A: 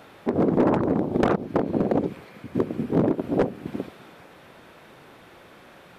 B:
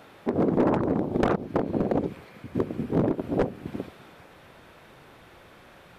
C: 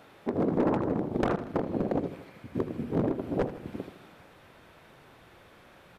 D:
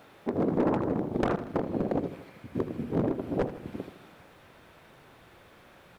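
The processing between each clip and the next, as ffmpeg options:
-af "asubboost=boost=2:cutoff=130,volume=-2dB"
-af "aecho=1:1:79|158|237|316|395|474:0.224|0.121|0.0653|0.0353|0.019|0.0103,volume=-4dB"
-af "acrusher=bits=11:mix=0:aa=0.000001"

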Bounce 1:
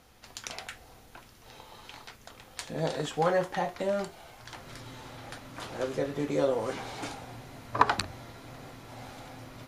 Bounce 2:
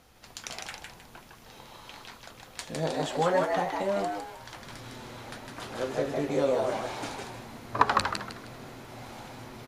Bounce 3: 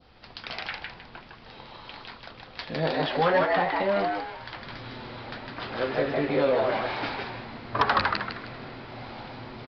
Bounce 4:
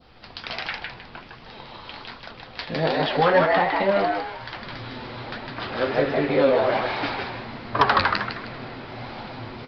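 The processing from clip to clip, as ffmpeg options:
-filter_complex "[0:a]asplit=5[a][b][c][d][e];[b]adelay=156,afreqshift=110,volume=-3.5dB[f];[c]adelay=312,afreqshift=220,volume=-13.7dB[g];[d]adelay=468,afreqshift=330,volume=-23.8dB[h];[e]adelay=624,afreqshift=440,volume=-34dB[i];[a][f][g][h][i]amix=inputs=5:normalize=0"
-af "adynamicequalizer=threshold=0.00562:dfrequency=1900:dqfactor=0.95:tfrequency=1900:tqfactor=0.95:attack=5:release=100:ratio=0.375:range=3:mode=boostabove:tftype=bell,aresample=11025,asoftclip=type=tanh:threshold=-18dB,aresample=44100,volume=3.5dB"
-af "flanger=delay=4.1:depth=8.7:regen=69:speed=1.3:shape=triangular,volume=8.5dB"

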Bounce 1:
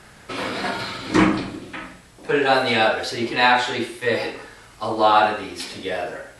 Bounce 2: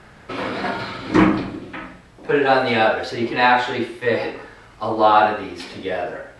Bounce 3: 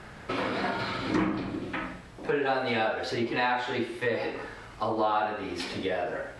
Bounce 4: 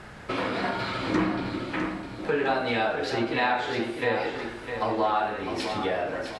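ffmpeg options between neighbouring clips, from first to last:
-af "aemphasis=mode=reproduction:type=75kf,volume=2.5dB"
-af "acompressor=threshold=-28dB:ratio=3"
-af "aecho=1:1:656|1312|1968|2624:0.398|0.155|0.0606|0.0236,volume=1.5dB"

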